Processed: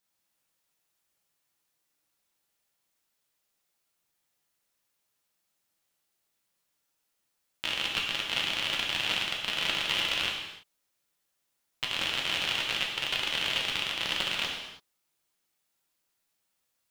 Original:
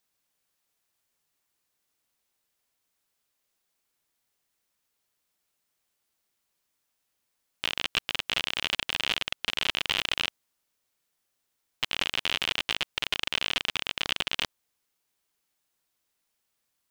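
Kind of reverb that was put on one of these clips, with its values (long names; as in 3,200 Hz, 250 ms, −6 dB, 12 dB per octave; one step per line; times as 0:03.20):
reverb whose tail is shaped and stops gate 360 ms falling, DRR −2 dB
level −4 dB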